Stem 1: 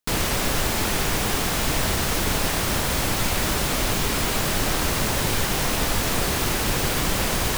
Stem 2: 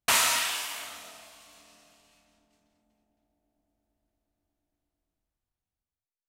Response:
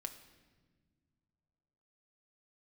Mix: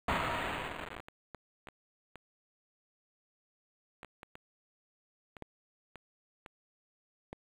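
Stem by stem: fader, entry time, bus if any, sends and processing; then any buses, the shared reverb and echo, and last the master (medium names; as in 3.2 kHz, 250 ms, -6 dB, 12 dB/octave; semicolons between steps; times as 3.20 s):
-6.0 dB, 0.00 s, send -11 dB, treble shelf 2.8 kHz -11 dB; spectral gate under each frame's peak -30 dB weak; sliding maximum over 33 samples
-6.0 dB, 0.00 s, no send, tilt EQ -4 dB/octave; level rider gain up to 7 dB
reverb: on, pre-delay 6 ms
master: treble shelf 4.5 kHz +4.5 dB; word length cut 6-bit, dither none; decimation joined by straight lines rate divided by 8×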